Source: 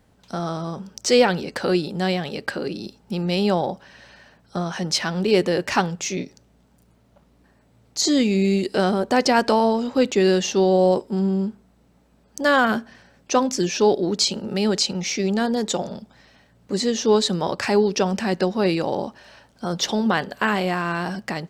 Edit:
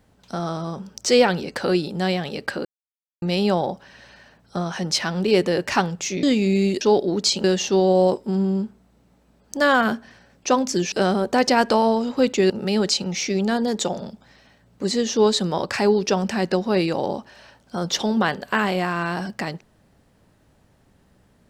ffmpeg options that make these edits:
-filter_complex "[0:a]asplit=8[a][b][c][d][e][f][g][h];[a]atrim=end=2.65,asetpts=PTS-STARTPTS,afade=t=out:st=2.646:d=0.004:c=hsin[i];[b]atrim=start=2.65:end=3.22,asetpts=PTS-STARTPTS,volume=0[j];[c]atrim=start=3.22:end=6.232,asetpts=PTS-STARTPTS,afade=t=in:d=0.004:c=hsin[k];[d]atrim=start=8.118:end=8.702[l];[e]atrim=start=13.758:end=14.392[m];[f]atrim=start=10.278:end=13.762[n];[g]atrim=start=8.698:end=10.282[o];[h]atrim=start=14.388[p];[i][j][k]concat=n=3:v=0:a=1[q];[q][l]acrossfade=d=0.004:c1=hsin:c2=hsin[r];[r][m]acrossfade=d=0.004:c1=hsin:c2=hsin[s];[s][n]acrossfade=d=0.004:c1=hsin:c2=hsin[t];[t][o]acrossfade=d=0.004:c1=hsin:c2=hsin[u];[u][p]acrossfade=d=0.004:c1=hsin:c2=hsin"

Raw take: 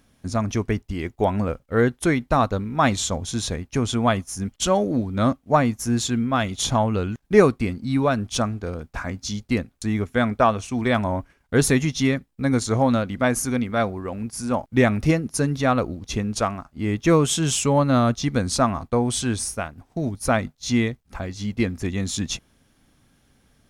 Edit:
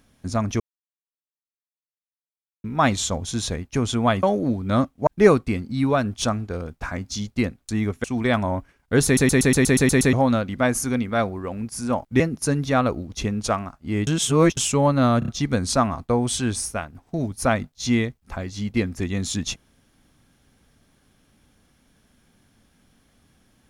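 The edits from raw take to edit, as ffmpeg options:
-filter_complex "[0:a]asplit=21[a][b][c][d][e][f][g][h][i][j][k][l][m][n][o][p][q][r][s][t][u];[a]atrim=end=0.6,asetpts=PTS-STARTPTS,afade=t=out:st=0.596:d=0.004:c=hsin[v];[b]atrim=start=0.6:end=2.64,asetpts=PTS-STARTPTS,volume=0[w];[c]atrim=start=2.64:end=4.232,asetpts=PTS-STARTPTS,afade=t=in:d=0.004:c=hsin[x];[d]atrim=start=4.708:end=5.552[y];[e]atrim=start=7.198:end=10.172[z];[f]atrim=start=10.648:end=11.782[aa];[g]atrim=start=11.658:end=11.782[ab];[h]atrim=start=11.658:end=11.782[ac];[i]atrim=start=11.658:end=11.782[ad];[j]atrim=start=11.658:end=11.782[ae];[k]atrim=start=11.658:end=11.782[af];[l]atrim=start=11.658:end=11.782[ag];[m]atrim=start=11.658:end=11.782[ah];[n]atrim=start=11.658:end=11.782[ai];[o]atrim=start=12.738:end=14.812[aj];[p]atrim=start=15.118:end=16.992[ak];[q]atrim=start=16.988:end=17.492,asetpts=PTS-STARTPTS,areverse[al];[r]atrim=start=17.488:end=18.142[am];[s]atrim=start=18.108:end=18.142[an];[t]atrim=start=18.108:end=18.142[ao];[u]atrim=start=18.108[ap];[v][w][x]concat=n=3:v=0:a=1[aq];[aq][y]acrossfade=d=0.004:c1=hsin:c2=hsin[ar];[ar][z]acrossfade=d=0.004:c1=hsin:c2=hsin[as];[as][aa]acrossfade=d=0.004:c1=hsin:c2=hsin[at];[at][ab]acrossfade=d=0.004:c1=hsin:c2=hsin[au];[au][ac]acrossfade=d=0.004:c1=hsin:c2=hsin[av];[av][ad]acrossfade=d=0.004:c1=hsin:c2=hsin[aw];[aw][ae]acrossfade=d=0.004:c1=hsin:c2=hsin[ax];[ax][af]acrossfade=d=0.004:c1=hsin:c2=hsin[ay];[ay][ag]acrossfade=d=0.004:c1=hsin:c2=hsin[az];[az][ah]acrossfade=d=0.004:c1=hsin:c2=hsin[ba];[ba][ai]acrossfade=d=0.004:c1=hsin:c2=hsin[bb];[bb][aj]acrossfade=d=0.004:c1=hsin:c2=hsin[bc];[bc][ak]acrossfade=d=0.004:c1=hsin:c2=hsin[bd];[bd][al]acrossfade=d=0.004:c1=hsin:c2=hsin[be];[be][am]acrossfade=d=0.004:c1=hsin:c2=hsin[bf];[bf][an]acrossfade=d=0.004:c1=hsin:c2=hsin[bg];[bg][ao]acrossfade=d=0.004:c1=hsin:c2=hsin[bh];[bh][ap]acrossfade=d=0.004:c1=hsin:c2=hsin"

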